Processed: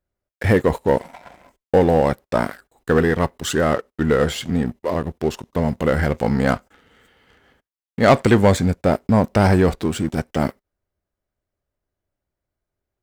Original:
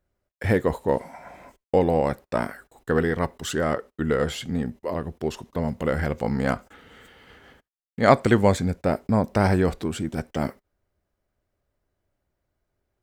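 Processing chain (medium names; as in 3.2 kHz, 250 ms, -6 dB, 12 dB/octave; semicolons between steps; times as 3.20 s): waveshaping leveller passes 2; trim -1.5 dB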